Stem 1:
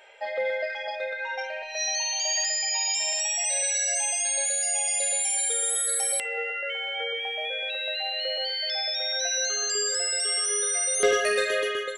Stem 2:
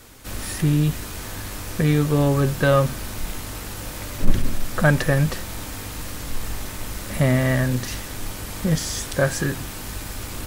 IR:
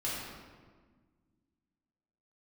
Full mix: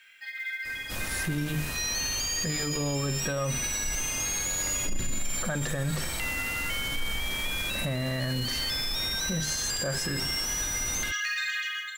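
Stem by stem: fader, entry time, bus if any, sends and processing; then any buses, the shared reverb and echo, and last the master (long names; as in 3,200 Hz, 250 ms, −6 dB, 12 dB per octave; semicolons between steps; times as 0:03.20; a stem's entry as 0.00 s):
0.0 dB, 0.00 s, no send, Chebyshev band-pass filter 1,400–7,200 Hz, order 4; log-companded quantiser 6 bits
−1.5 dB, 0.65 s, no send, mains-hum notches 50/100/150/200/250/300/350/400/450 Hz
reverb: not used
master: brickwall limiter −21 dBFS, peak gain reduction 18 dB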